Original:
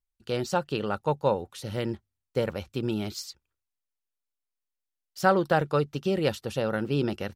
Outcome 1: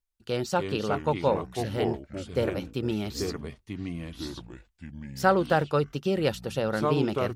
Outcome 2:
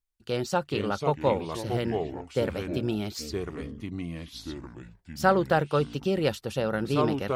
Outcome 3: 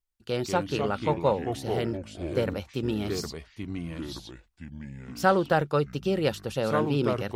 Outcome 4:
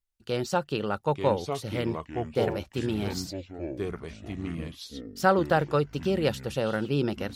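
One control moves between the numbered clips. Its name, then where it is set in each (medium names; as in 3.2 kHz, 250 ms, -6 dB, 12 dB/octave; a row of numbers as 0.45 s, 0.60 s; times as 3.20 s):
ever faster or slower copies, time: 221 ms, 353 ms, 115 ms, 812 ms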